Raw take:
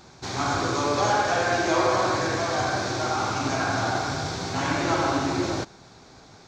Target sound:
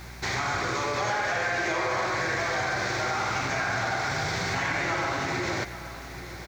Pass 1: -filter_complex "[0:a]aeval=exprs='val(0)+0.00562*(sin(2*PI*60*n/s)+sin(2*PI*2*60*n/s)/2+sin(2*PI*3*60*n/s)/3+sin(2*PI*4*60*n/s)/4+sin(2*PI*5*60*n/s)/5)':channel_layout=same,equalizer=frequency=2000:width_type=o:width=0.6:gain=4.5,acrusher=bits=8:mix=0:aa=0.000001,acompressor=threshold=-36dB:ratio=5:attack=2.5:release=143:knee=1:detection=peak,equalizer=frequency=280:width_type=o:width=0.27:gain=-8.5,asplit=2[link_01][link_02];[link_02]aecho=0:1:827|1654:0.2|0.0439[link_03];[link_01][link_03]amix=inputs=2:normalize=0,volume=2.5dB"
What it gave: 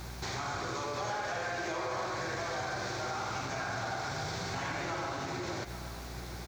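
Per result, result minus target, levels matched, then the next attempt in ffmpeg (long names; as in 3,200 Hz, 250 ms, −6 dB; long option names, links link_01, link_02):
downward compressor: peak gain reduction +7 dB; 2,000 Hz band −2.5 dB
-filter_complex "[0:a]aeval=exprs='val(0)+0.00562*(sin(2*PI*60*n/s)+sin(2*PI*2*60*n/s)/2+sin(2*PI*3*60*n/s)/3+sin(2*PI*4*60*n/s)/4+sin(2*PI*5*60*n/s)/5)':channel_layout=same,equalizer=frequency=2000:width_type=o:width=0.6:gain=4.5,acrusher=bits=8:mix=0:aa=0.000001,acompressor=threshold=-26.5dB:ratio=5:attack=2.5:release=143:knee=1:detection=peak,equalizer=frequency=280:width_type=o:width=0.27:gain=-8.5,asplit=2[link_01][link_02];[link_02]aecho=0:1:827|1654:0.2|0.0439[link_03];[link_01][link_03]amix=inputs=2:normalize=0,volume=2.5dB"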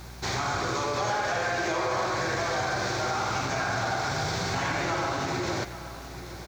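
2,000 Hz band −2.5 dB
-filter_complex "[0:a]aeval=exprs='val(0)+0.00562*(sin(2*PI*60*n/s)+sin(2*PI*2*60*n/s)/2+sin(2*PI*3*60*n/s)/3+sin(2*PI*4*60*n/s)/4+sin(2*PI*5*60*n/s)/5)':channel_layout=same,equalizer=frequency=2000:width_type=o:width=0.6:gain=13,acrusher=bits=8:mix=0:aa=0.000001,acompressor=threshold=-26.5dB:ratio=5:attack=2.5:release=143:knee=1:detection=peak,equalizer=frequency=280:width_type=o:width=0.27:gain=-8.5,asplit=2[link_01][link_02];[link_02]aecho=0:1:827|1654:0.2|0.0439[link_03];[link_01][link_03]amix=inputs=2:normalize=0,volume=2.5dB"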